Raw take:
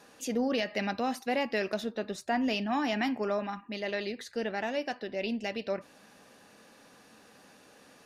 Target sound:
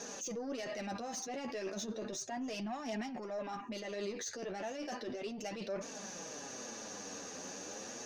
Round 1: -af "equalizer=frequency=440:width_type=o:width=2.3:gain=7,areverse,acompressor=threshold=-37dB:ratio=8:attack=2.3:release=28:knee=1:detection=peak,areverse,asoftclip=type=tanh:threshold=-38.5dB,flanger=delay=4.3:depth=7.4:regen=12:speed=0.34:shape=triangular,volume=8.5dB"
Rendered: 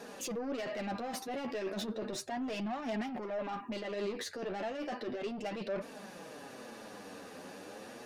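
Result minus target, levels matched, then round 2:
8,000 Hz band −8.5 dB; downward compressor: peak gain reduction −5.5 dB
-af "lowpass=frequency=6300:width_type=q:width=11,equalizer=frequency=440:width_type=o:width=2.3:gain=7,areverse,acompressor=threshold=-43dB:ratio=8:attack=2.3:release=28:knee=1:detection=peak,areverse,asoftclip=type=tanh:threshold=-38.5dB,flanger=delay=4.3:depth=7.4:regen=12:speed=0.34:shape=triangular,volume=8.5dB"

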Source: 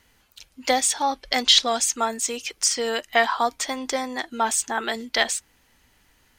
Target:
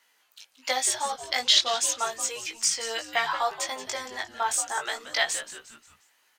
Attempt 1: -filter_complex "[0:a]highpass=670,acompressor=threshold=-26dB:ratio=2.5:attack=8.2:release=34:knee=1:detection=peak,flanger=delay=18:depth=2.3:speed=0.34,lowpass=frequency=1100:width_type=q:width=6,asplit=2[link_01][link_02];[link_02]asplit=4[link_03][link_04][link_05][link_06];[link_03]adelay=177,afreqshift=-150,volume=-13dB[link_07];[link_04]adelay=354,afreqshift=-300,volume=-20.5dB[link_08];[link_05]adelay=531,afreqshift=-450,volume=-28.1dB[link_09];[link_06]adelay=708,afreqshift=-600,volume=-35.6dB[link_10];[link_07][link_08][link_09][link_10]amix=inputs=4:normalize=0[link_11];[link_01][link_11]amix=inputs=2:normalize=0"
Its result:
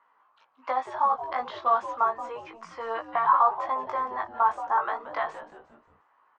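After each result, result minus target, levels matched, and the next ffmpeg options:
downward compressor: peak gain reduction +9 dB; 1,000 Hz band +8.0 dB
-filter_complex "[0:a]highpass=670,flanger=delay=18:depth=2.3:speed=0.34,lowpass=frequency=1100:width_type=q:width=6,asplit=2[link_01][link_02];[link_02]asplit=4[link_03][link_04][link_05][link_06];[link_03]adelay=177,afreqshift=-150,volume=-13dB[link_07];[link_04]adelay=354,afreqshift=-300,volume=-20.5dB[link_08];[link_05]adelay=531,afreqshift=-450,volume=-28.1dB[link_09];[link_06]adelay=708,afreqshift=-600,volume=-35.6dB[link_10];[link_07][link_08][link_09][link_10]amix=inputs=4:normalize=0[link_11];[link_01][link_11]amix=inputs=2:normalize=0"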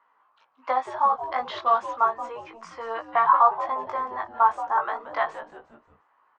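1,000 Hz band +8.0 dB
-filter_complex "[0:a]highpass=670,flanger=delay=18:depth=2.3:speed=0.34,asplit=2[link_01][link_02];[link_02]asplit=4[link_03][link_04][link_05][link_06];[link_03]adelay=177,afreqshift=-150,volume=-13dB[link_07];[link_04]adelay=354,afreqshift=-300,volume=-20.5dB[link_08];[link_05]adelay=531,afreqshift=-450,volume=-28.1dB[link_09];[link_06]adelay=708,afreqshift=-600,volume=-35.6dB[link_10];[link_07][link_08][link_09][link_10]amix=inputs=4:normalize=0[link_11];[link_01][link_11]amix=inputs=2:normalize=0"

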